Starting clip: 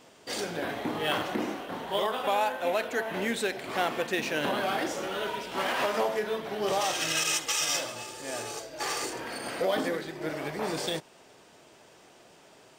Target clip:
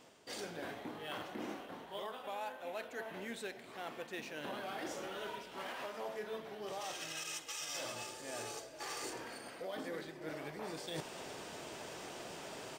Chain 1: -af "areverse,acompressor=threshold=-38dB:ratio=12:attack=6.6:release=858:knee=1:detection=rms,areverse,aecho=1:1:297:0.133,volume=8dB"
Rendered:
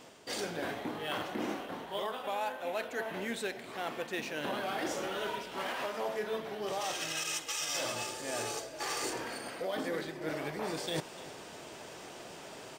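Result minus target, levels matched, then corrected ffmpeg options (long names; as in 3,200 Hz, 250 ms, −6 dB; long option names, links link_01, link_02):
downward compressor: peak gain reduction −7.5 dB
-af "areverse,acompressor=threshold=-46dB:ratio=12:attack=6.6:release=858:knee=1:detection=rms,areverse,aecho=1:1:297:0.133,volume=8dB"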